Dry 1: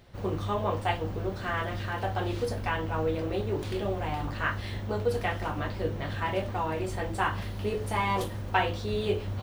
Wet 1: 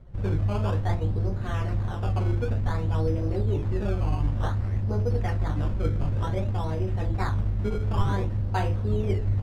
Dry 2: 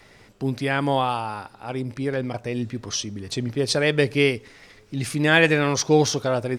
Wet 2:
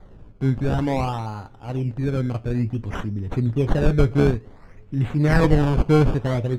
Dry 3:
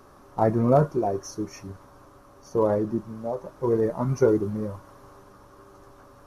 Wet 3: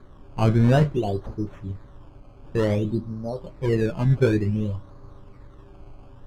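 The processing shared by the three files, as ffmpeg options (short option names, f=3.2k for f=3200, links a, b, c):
-af "acrusher=samples=16:mix=1:aa=0.000001:lfo=1:lforange=16:lforate=0.55,flanger=delay=5.2:depth=6.1:regen=-69:speed=0.52:shape=triangular,aemphasis=mode=reproduction:type=riaa"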